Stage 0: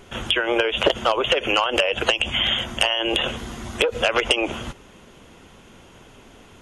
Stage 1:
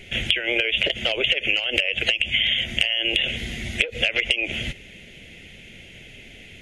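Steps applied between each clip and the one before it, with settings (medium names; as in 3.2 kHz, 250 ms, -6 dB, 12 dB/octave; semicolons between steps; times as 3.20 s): FFT filter 170 Hz 0 dB, 270 Hz -5 dB, 660 Hz -5 dB, 1.1 kHz -26 dB, 2.1 kHz +11 dB, 5.5 kHz -3 dB; compression 6:1, threshold -21 dBFS, peak gain reduction 12.5 dB; trim +3 dB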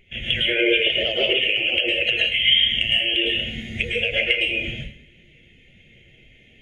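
in parallel at -11.5 dB: saturation -17.5 dBFS, distortion -10 dB; on the sum: plate-style reverb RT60 0.72 s, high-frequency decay 0.9×, pre-delay 95 ms, DRR -3.5 dB; spectral contrast expander 1.5:1; trim -4 dB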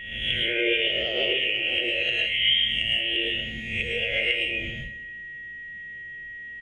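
reverse spectral sustain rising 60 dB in 0.68 s; feedback delay 180 ms, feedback 54%, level -23 dB; whistle 1.9 kHz -29 dBFS; trim -7 dB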